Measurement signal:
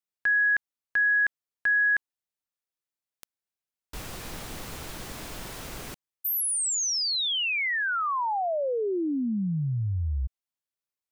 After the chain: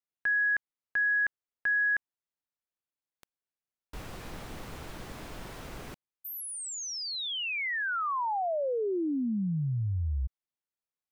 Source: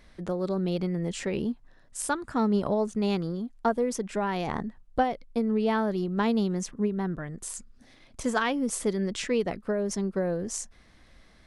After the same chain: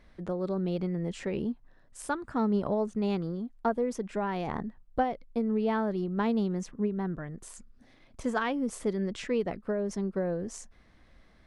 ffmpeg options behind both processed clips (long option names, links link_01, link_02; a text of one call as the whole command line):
ffmpeg -i in.wav -af "highshelf=frequency=3600:gain=-10,acontrast=31,volume=-7.5dB" out.wav